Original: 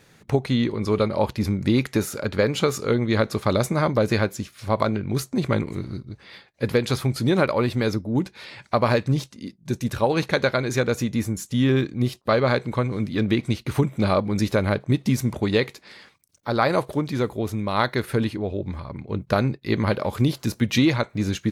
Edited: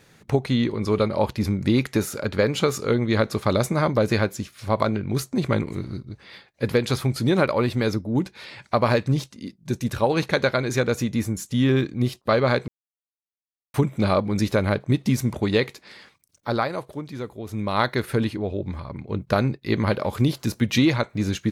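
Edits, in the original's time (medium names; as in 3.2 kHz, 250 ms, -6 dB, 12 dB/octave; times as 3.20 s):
12.68–13.74 s: mute
16.54–17.61 s: dip -8.5 dB, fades 0.15 s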